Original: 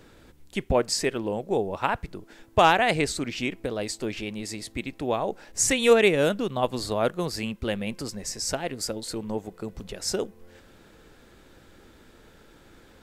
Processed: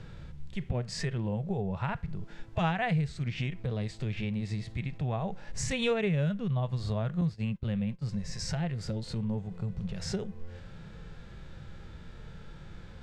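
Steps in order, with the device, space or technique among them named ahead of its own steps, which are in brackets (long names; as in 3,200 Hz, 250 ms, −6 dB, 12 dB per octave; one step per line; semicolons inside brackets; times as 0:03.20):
harmonic and percussive parts rebalanced percussive −14 dB
jukebox (low-pass filter 5,300 Hz 12 dB per octave; low shelf with overshoot 210 Hz +9 dB, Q 3; downward compressor 3 to 1, threshold −36 dBFS, peak gain reduction 16 dB)
dynamic equaliser 1,900 Hz, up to +4 dB, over −60 dBFS, Q 2.6
0:07.21–0:08.03: noise gate −38 dBFS, range −19 dB
level +5 dB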